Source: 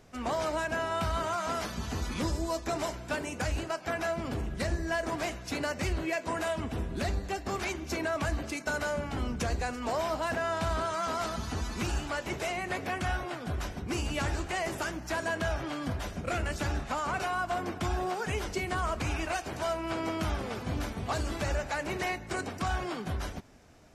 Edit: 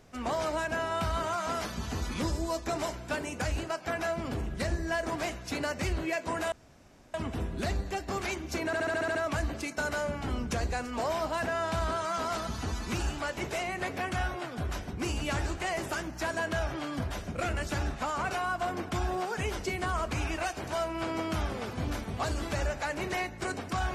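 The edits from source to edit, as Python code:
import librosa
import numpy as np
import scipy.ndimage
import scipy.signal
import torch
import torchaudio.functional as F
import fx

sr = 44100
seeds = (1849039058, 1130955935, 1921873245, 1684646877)

y = fx.edit(x, sr, fx.insert_room_tone(at_s=6.52, length_s=0.62),
    fx.stutter(start_s=8.04, slice_s=0.07, count=8), tone=tone)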